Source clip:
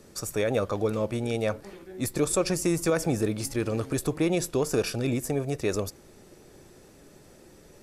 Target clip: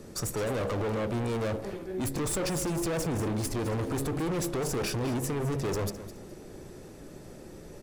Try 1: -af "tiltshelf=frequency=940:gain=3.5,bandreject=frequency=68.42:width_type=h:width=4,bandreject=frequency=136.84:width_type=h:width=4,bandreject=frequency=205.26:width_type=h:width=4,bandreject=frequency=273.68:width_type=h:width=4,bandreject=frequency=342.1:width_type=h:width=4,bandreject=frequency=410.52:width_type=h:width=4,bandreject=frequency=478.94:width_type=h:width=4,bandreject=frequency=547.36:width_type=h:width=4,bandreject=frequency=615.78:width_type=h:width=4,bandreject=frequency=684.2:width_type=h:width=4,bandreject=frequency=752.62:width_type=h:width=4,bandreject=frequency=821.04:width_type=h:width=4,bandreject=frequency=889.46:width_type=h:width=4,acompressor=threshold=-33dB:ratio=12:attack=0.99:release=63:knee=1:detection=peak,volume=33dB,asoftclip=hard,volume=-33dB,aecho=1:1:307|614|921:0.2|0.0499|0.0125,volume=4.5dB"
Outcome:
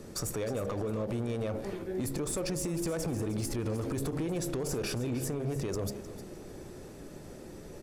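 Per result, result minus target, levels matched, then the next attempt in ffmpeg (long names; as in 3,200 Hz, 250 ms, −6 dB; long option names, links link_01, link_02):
downward compressor: peak gain reduction +9.5 dB; echo 98 ms late
-af "tiltshelf=frequency=940:gain=3.5,bandreject=frequency=68.42:width_type=h:width=4,bandreject=frequency=136.84:width_type=h:width=4,bandreject=frequency=205.26:width_type=h:width=4,bandreject=frequency=273.68:width_type=h:width=4,bandreject=frequency=342.1:width_type=h:width=4,bandreject=frequency=410.52:width_type=h:width=4,bandreject=frequency=478.94:width_type=h:width=4,bandreject=frequency=547.36:width_type=h:width=4,bandreject=frequency=615.78:width_type=h:width=4,bandreject=frequency=684.2:width_type=h:width=4,bandreject=frequency=752.62:width_type=h:width=4,bandreject=frequency=821.04:width_type=h:width=4,bandreject=frequency=889.46:width_type=h:width=4,acompressor=threshold=-22.5dB:ratio=12:attack=0.99:release=63:knee=1:detection=peak,volume=33dB,asoftclip=hard,volume=-33dB,aecho=1:1:307|614|921:0.2|0.0499|0.0125,volume=4.5dB"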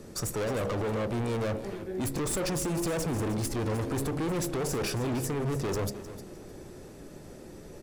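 echo 98 ms late
-af "tiltshelf=frequency=940:gain=3.5,bandreject=frequency=68.42:width_type=h:width=4,bandreject=frequency=136.84:width_type=h:width=4,bandreject=frequency=205.26:width_type=h:width=4,bandreject=frequency=273.68:width_type=h:width=4,bandreject=frequency=342.1:width_type=h:width=4,bandreject=frequency=410.52:width_type=h:width=4,bandreject=frequency=478.94:width_type=h:width=4,bandreject=frequency=547.36:width_type=h:width=4,bandreject=frequency=615.78:width_type=h:width=4,bandreject=frequency=684.2:width_type=h:width=4,bandreject=frequency=752.62:width_type=h:width=4,bandreject=frequency=821.04:width_type=h:width=4,bandreject=frequency=889.46:width_type=h:width=4,acompressor=threshold=-22.5dB:ratio=12:attack=0.99:release=63:knee=1:detection=peak,volume=33dB,asoftclip=hard,volume=-33dB,aecho=1:1:209|418|627:0.2|0.0499|0.0125,volume=4.5dB"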